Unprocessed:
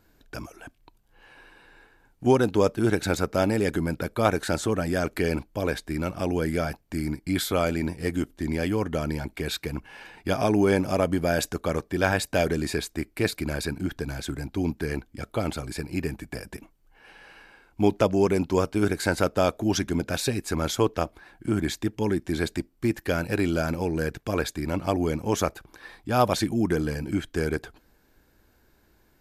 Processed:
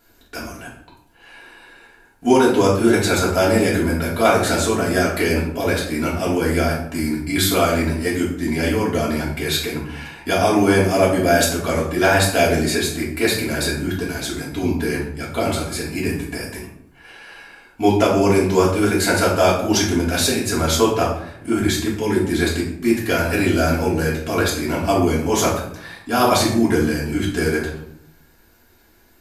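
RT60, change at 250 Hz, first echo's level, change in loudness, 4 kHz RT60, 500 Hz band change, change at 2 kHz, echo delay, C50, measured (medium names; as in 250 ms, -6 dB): 0.75 s, +7.0 dB, no echo, +7.5 dB, 0.45 s, +7.5 dB, +9.5 dB, no echo, 4.5 dB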